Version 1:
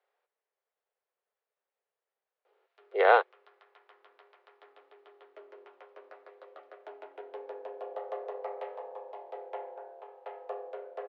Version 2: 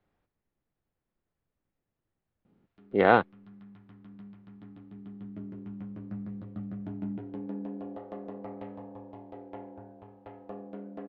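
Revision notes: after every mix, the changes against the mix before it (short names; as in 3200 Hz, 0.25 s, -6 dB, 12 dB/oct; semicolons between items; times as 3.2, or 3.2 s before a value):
background -6.0 dB; master: remove steep high-pass 410 Hz 72 dB/oct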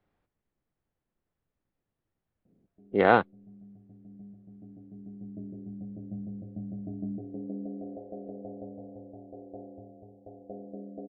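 background: add steep low-pass 740 Hz 96 dB/oct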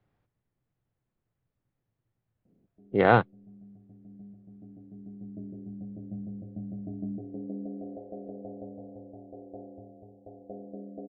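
speech: add bell 120 Hz +12 dB 0.57 oct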